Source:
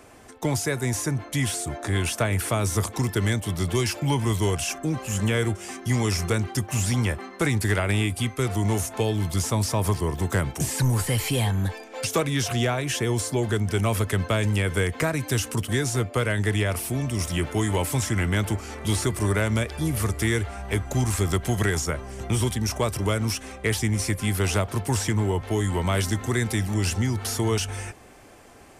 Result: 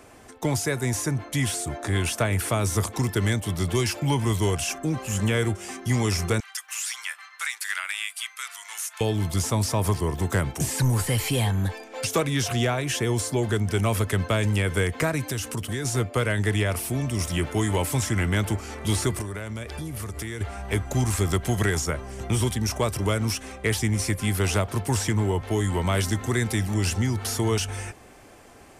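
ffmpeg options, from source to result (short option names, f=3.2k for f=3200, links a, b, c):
-filter_complex "[0:a]asettb=1/sr,asplit=3[a][b][c];[a]atrim=end=6.404[d];[b]atrim=start=6.4:end=9.01,asetpts=PTS-STARTPTS,afade=t=in:d=0.004:c=qsin,afade=t=out:st=2.606:d=0.004:c=qsin,highpass=f=1.3k:w=0.5412,highpass=f=1.3k:w=1.3066[e];[c]atrim=start=9.006[f];[d][e]acrossfade=d=0.004:c1=hsin:c2=qsin[g];[g][f]acrossfade=d=0.004:c1=qsin:c2=hsin,asettb=1/sr,asplit=3[h][i][j];[h]atrim=end=15.284[k];[i]atrim=start=15.28:end=15.85,asetpts=PTS-STARTPTS,afade=t=in:d=0.004:c=qsin,afade=t=out:st=0.566:d=0.004:c=qsin,acompressor=threshold=-26dB:ratio=3:attack=3.2:release=140:knee=1:detection=peak[l];[j]atrim=start=15.846[m];[k][l]acrossfade=d=0.004:c1=hsin:c2=qsin[n];[n][m]acrossfade=d=0.004:c1=qsin:c2=hsin,asettb=1/sr,asplit=3[o][p][q];[o]atrim=end=19.214[r];[p]atrim=start=19.21:end=20.41,asetpts=PTS-STARTPTS,afade=t=in:d=0.004:c=qsin,afade=t=out:st=1.196:d=0.004:c=qsin,acompressor=threshold=-29dB:ratio=10:attack=3.2:release=140:knee=1:detection=peak[s];[q]atrim=start=20.406[t];[r][s]acrossfade=d=0.004:c1=hsin:c2=qsin[u];[u][t]acrossfade=d=0.004:c1=qsin:c2=hsin"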